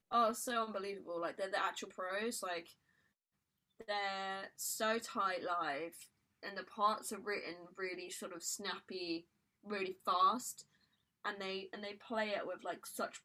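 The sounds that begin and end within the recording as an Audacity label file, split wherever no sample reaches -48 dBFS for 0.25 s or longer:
3.800000	6.040000	sound
6.430000	9.200000	sound
9.660000	10.610000	sound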